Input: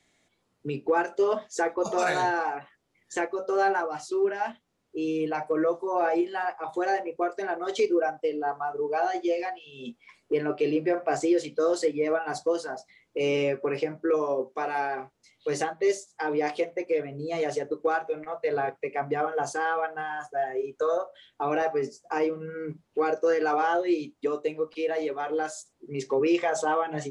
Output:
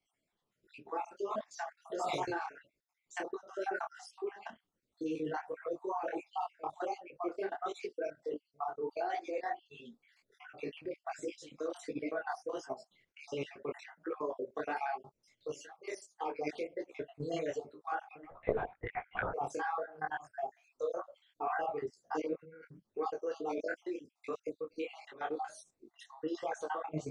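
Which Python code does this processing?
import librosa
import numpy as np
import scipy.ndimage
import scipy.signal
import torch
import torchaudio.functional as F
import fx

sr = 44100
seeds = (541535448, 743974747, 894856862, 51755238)

y = fx.spec_dropout(x, sr, seeds[0], share_pct=54)
y = fx.highpass(y, sr, hz=780.0, slope=6, at=(15.54, 16.36))
y = fx.level_steps(y, sr, step_db=17)
y = fx.lpc_vocoder(y, sr, seeds[1], excitation='whisper', order=10, at=(18.31, 19.31))
y = fx.detune_double(y, sr, cents=49)
y = y * librosa.db_to_amplitude(2.5)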